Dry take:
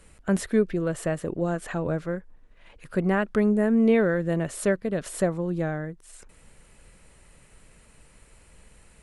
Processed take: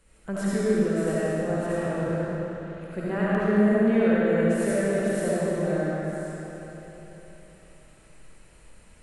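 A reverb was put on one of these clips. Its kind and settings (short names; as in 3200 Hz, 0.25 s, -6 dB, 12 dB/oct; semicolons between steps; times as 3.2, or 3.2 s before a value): digital reverb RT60 3.8 s, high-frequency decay 0.85×, pre-delay 30 ms, DRR -9.5 dB; gain -9 dB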